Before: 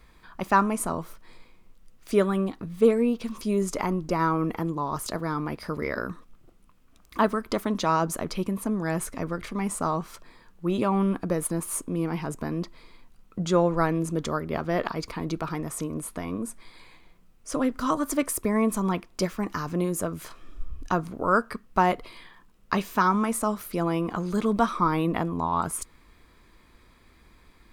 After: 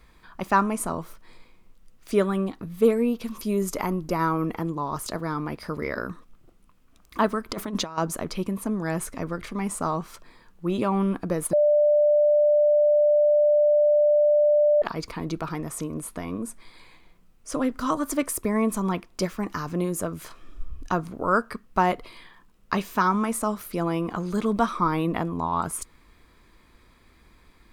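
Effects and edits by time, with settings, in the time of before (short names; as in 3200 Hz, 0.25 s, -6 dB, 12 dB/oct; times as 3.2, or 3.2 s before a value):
2.62–4.45 bell 12000 Hz +11.5 dB 0.25 oct
7.49–7.98 negative-ratio compressor -29 dBFS, ratio -0.5
11.53–14.82 bleep 593 Hz -15.5 dBFS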